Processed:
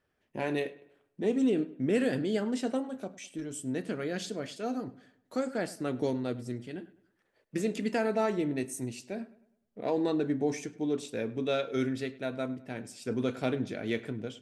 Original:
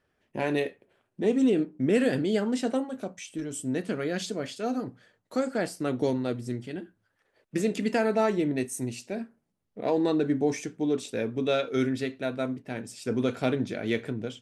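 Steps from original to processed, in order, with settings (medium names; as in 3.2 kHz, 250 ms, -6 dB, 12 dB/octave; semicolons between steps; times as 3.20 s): filtered feedback delay 102 ms, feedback 42%, low-pass 3.8 kHz, level -19 dB; trim -4 dB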